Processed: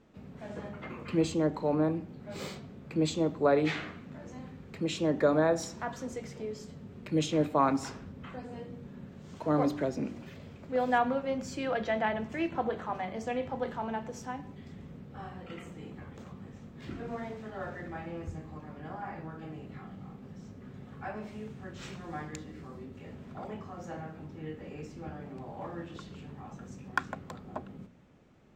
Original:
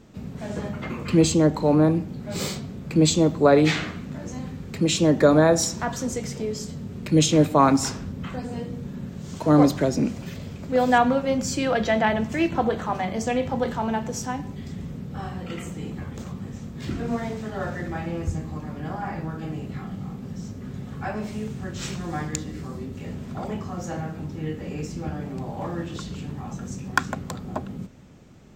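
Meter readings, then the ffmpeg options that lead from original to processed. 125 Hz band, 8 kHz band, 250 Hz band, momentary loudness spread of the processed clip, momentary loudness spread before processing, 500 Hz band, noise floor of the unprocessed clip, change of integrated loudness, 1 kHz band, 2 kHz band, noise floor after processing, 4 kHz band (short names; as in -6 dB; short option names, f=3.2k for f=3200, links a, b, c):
-12.5 dB, -17.0 dB, -10.5 dB, 19 LU, 17 LU, -8.5 dB, -38 dBFS, -9.0 dB, -8.0 dB, -8.5 dB, -50 dBFS, -12.5 dB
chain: -af "bass=f=250:g=-5,treble=f=4k:g=-10,bandreject=f=58.9:t=h:w=4,bandreject=f=117.8:t=h:w=4,bandreject=f=176.7:t=h:w=4,bandreject=f=235.6:t=h:w=4,bandreject=f=294.5:t=h:w=4,bandreject=f=353.4:t=h:w=4,bandreject=f=412.3:t=h:w=4,volume=-8dB"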